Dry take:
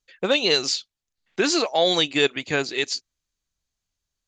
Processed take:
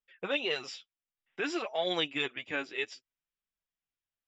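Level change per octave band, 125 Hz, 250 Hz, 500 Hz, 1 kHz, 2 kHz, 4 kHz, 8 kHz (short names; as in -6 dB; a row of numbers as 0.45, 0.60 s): -14.5, -12.0, -12.0, -11.0, -9.0, -13.5, -22.0 dB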